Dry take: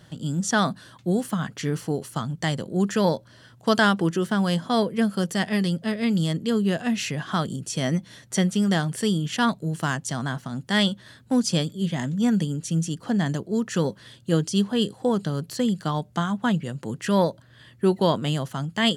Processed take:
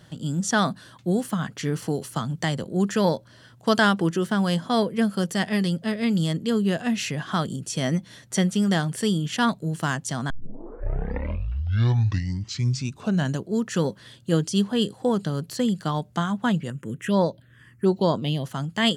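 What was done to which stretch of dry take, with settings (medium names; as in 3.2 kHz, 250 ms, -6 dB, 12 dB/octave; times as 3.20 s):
1.82–2.64 s: three bands compressed up and down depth 40%
10.30 s: tape start 3.16 s
16.70–18.44 s: touch-sensitive phaser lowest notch 590 Hz, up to 2.5 kHz, full sweep at -16 dBFS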